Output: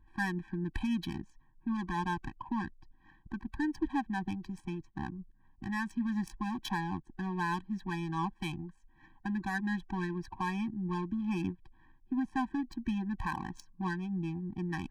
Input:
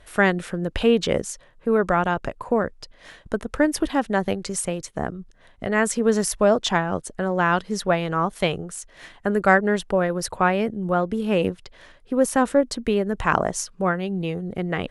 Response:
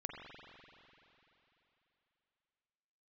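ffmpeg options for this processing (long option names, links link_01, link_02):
-af "adynamicsmooth=sensitivity=2:basefreq=980,alimiter=limit=-12dB:level=0:latency=1:release=85,afftfilt=real='re*eq(mod(floor(b*sr/1024/380),2),0)':imag='im*eq(mod(floor(b*sr/1024/380),2),0)':win_size=1024:overlap=0.75,volume=-7.5dB"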